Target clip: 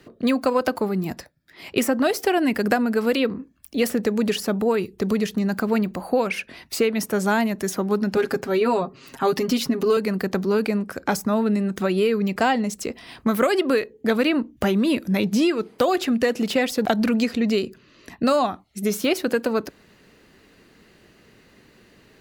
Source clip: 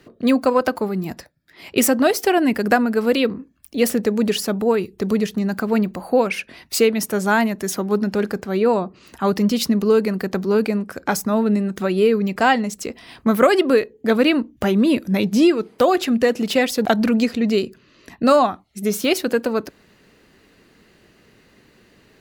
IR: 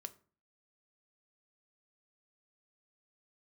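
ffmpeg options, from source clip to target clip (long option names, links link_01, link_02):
-filter_complex "[0:a]asettb=1/sr,asplit=3[link_01][link_02][link_03];[link_01]atrim=end=8.164[link_04];[link_02]atrim=start=8.16:end=9.97,asetpts=PTS-STARTPTS,afade=type=in:duration=0.004:curve=qsin,afade=type=out:start_time=1.806:duration=0.004:curve=qsin,aecho=1:1:7.4:0.85,atrim=end_sample=79821[link_05];[link_03]atrim=start=9.966[link_06];[link_04][link_05]acrossfade=duration=0.004:curve1=hsin:curve2=qsin[link_07];[link_07][link_06]acrossfade=duration=0.004:curve1=qsin:curve2=hsin,acrossover=split=900|2100[link_08][link_09][link_10];[link_08]acompressor=threshold=-18dB:ratio=4[link_11];[link_09]acompressor=threshold=-28dB:ratio=4[link_12];[link_10]acompressor=threshold=-29dB:ratio=4[link_13];[link_11][link_12][link_13]amix=inputs=3:normalize=0"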